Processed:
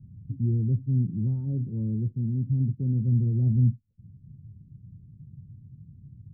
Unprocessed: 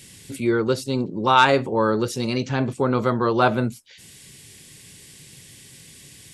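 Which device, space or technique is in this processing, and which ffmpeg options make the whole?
the neighbour's flat through the wall: -filter_complex "[0:a]asettb=1/sr,asplit=3[a][b][c];[a]atrim=end=1.404[d];[b]atrim=start=1.4:end=3.08,asetpts=PTS-STARTPTS,afade=t=in:d=0.004:c=qsin,afade=t=out:st=1.676:d=0.004:c=qsin,equalizer=f=61:t=o:w=2.6:g=-6[e];[c]atrim=start=3.076[f];[d][e]acrossfade=d=0.004:c1=hsin:c2=qsin[g];[g][f]acrossfade=d=0.004:c1=qsin:c2=hsin,lowpass=f=190:w=0.5412,lowpass=f=190:w=1.3066,equalizer=f=100:t=o:w=0.83:g=7,volume=3dB"

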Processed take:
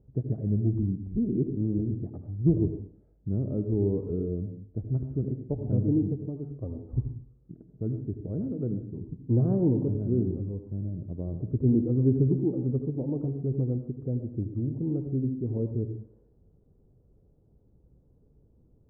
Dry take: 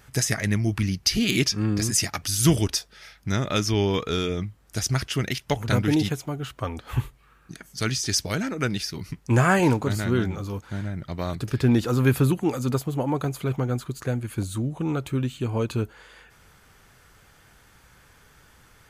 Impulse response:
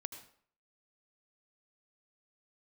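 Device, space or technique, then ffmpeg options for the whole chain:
next room: -filter_complex "[0:a]lowpass=f=460:w=0.5412,lowpass=f=460:w=1.3066[a];[1:a]atrim=start_sample=2205[b];[a][b]afir=irnorm=-1:irlink=0"

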